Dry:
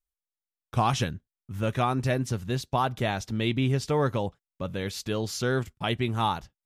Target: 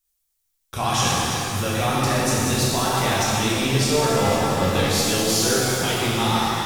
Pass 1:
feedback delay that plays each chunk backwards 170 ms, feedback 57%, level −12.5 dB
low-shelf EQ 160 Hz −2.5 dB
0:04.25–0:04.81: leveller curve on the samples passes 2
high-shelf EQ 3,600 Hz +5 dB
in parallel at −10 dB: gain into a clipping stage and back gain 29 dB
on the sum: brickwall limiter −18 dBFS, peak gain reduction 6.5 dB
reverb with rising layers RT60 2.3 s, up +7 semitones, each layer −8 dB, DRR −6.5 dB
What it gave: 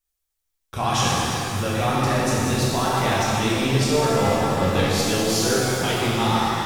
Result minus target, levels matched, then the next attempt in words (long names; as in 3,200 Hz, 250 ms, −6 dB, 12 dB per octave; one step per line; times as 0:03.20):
8,000 Hz band −3.0 dB
feedback delay that plays each chunk backwards 170 ms, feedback 57%, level −12.5 dB
low-shelf EQ 160 Hz −2.5 dB
0:04.25–0:04.81: leveller curve on the samples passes 2
high-shelf EQ 3,600 Hz +13 dB
in parallel at −10 dB: gain into a clipping stage and back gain 29 dB
on the sum: brickwall limiter −18 dBFS, peak gain reduction 8.5 dB
reverb with rising layers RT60 2.3 s, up +7 semitones, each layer −8 dB, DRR −6.5 dB